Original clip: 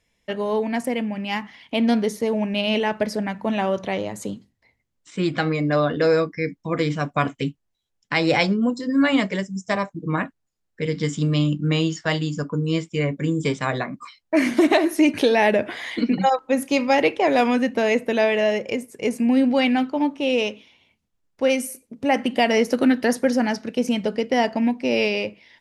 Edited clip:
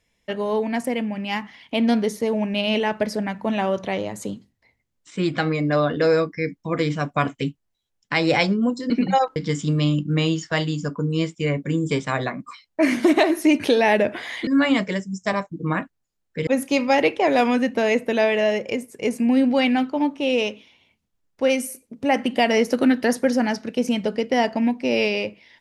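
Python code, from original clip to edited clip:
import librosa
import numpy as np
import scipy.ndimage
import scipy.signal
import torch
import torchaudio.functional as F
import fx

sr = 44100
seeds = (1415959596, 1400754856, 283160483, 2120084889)

y = fx.edit(x, sr, fx.swap(start_s=8.9, length_s=2.0, other_s=16.01, other_length_s=0.46), tone=tone)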